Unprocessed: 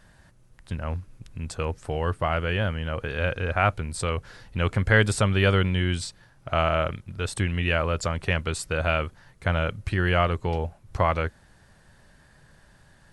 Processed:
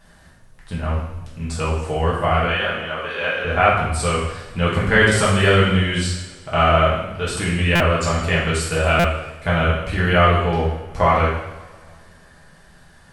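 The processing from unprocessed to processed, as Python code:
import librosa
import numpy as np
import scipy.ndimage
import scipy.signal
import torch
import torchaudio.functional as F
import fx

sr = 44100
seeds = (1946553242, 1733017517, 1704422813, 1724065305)

y = fx.weighting(x, sr, curve='A', at=(2.45, 3.45))
y = fx.rev_double_slope(y, sr, seeds[0], early_s=0.83, late_s=2.3, knee_db=-18, drr_db=-7.0)
y = fx.buffer_glitch(y, sr, at_s=(7.75, 8.99), block=256, repeats=8)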